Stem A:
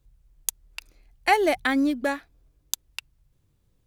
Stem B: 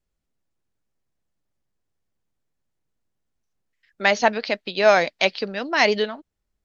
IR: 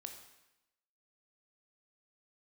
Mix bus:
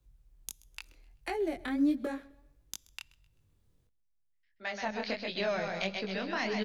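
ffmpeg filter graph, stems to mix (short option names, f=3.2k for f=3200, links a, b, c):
-filter_complex "[0:a]acrossover=split=410[a][b];[b]acompressor=threshold=-34dB:ratio=5[c];[a][c]amix=inputs=2:normalize=0,volume=-1.5dB,asplit=3[d][e][f];[e]volume=-15dB[g];[f]volume=-22.5dB[h];[1:a]bandreject=f=50:t=h:w=6,bandreject=f=100:t=h:w=6,bandreject=f=150:t=h:w=6,bandreject=f=200:t=h:w=6,asubboost=boost=4:cutoff=150,adelay=600,volume=-5dB,afade=t=in:st=4.78:d=0.22:silence=0.281838,asplit=3[i][j][k];[j]volume=-7.5dB[l];[k]volume=-4.5dB[m];[2:a]atrim=start_sample=2205[n];[g][l]amix=inputs=2:normalize=0[o];[o][n]afir=irnorm=-1:irlink=0[p];[h][m]amix=inputs=2:normalize=0,aecho=0:1:129|258|387|516|645:1|0.33|0.109|0.0359|0.0119[q];[d][i][p][q]amix=inputs=4:normalize=0,acrossover=split=270[r][s];[s]acompressor=threshold=-28dB:ratio=10[t];[r][t]amix=inputs=2:normalize=0,flanger=delay=18.5:depth=7.2:speed=1.5"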